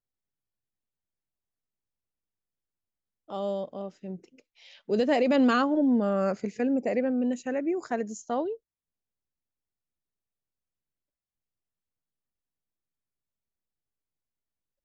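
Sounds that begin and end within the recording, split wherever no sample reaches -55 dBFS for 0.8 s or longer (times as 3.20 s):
3.28–8.57 s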